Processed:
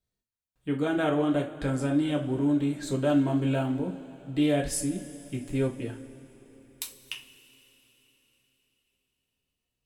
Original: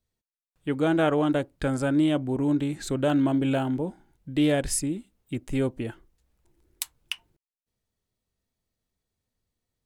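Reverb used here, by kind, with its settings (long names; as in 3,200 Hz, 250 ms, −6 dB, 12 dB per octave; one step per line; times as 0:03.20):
coupled-rooms reverb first 0.27 s, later 4.2 s, from −22 dB, DRR 0 dB
level −6 dB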